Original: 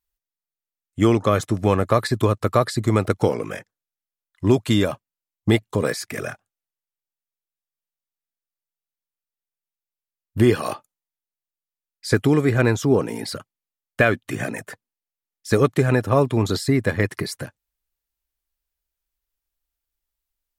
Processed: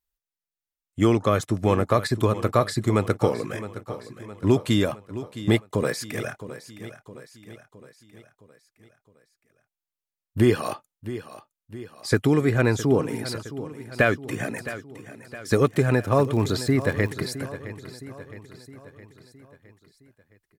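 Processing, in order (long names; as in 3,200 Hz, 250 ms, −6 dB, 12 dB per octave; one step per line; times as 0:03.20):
repeating echo 664 ms, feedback 53%, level −14 dB
0:15.65–0:17.12: surface crackle 54 per second −29 dBFS
level −2.5 dB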